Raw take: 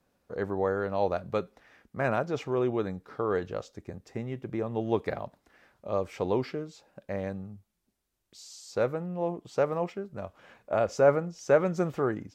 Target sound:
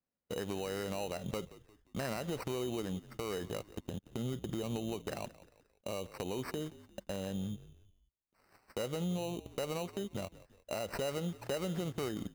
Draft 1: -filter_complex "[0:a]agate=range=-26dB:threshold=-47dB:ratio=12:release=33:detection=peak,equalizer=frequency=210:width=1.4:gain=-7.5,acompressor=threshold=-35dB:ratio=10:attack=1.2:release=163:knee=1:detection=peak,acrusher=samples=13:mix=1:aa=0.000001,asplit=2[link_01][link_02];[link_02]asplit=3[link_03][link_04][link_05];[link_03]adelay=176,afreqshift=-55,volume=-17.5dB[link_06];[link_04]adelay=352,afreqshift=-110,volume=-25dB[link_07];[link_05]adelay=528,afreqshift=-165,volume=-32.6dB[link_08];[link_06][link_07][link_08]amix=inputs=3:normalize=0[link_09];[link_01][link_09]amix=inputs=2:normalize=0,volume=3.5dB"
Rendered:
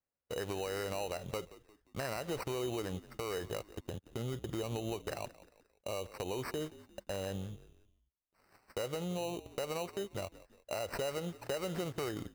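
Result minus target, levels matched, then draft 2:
250 Hz band −3.0 dB
-filter_complex "[0:a]agate=range=-26dB:threshold=-47dB:ratio=12:release=33:detection=peak,equalizer=frequency=210:width=1.4:gain=3,acompressor=threshold=-35dB:ratio=10:attack=1.2:release=163:knee=1:detection=peak,acrusher=samples=13:mix=1:aa=0.000001,asplit=2[link_01][link_02];[link_02]asplit=3[link_03][link_04][link_05];[link_03]adelay=176,afreqshift=-55,volume=-17.5dB[link_06];[link_04]adelay=352,afreqshift=-110,volume=-25dB[link_07];[link_05]adelay=528,afreqshift=-165,volume=-32.6dB[link_08];[link_06][link_07][link_08]amix=inputs=3:normalize=0[link_09];[link_01][link_09]amix=inputs=2:normalize=0,volume=3.5dB"

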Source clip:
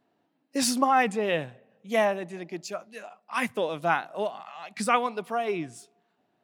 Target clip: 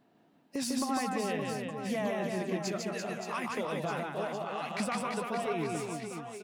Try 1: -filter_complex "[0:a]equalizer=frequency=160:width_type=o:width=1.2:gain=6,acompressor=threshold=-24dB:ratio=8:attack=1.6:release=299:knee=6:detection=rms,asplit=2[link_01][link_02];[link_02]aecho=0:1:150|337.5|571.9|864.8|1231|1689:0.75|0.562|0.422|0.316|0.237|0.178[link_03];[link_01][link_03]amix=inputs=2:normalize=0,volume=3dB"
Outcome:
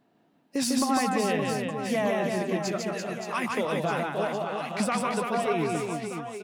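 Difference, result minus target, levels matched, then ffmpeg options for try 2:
downward compressor: peak gain reduction −7 dB
-filter_complex "[0:a]equalizer=frequency=160:width_type=o:width=1.2:gain=6,acompressor=threshold=-32dB:ratio=8:attack=1.6:release=299:knee=6:detection=rms,asplit=2[link_01][link_02];[link_02]aecho=0:1:150|337.5|571.9|864.8|1231|1689:0.75|0.562|0.422|0.316|0.237|0.178[link_03];[link_01][link_03]amix=inputs=2:normalize=0,volume=3dB"

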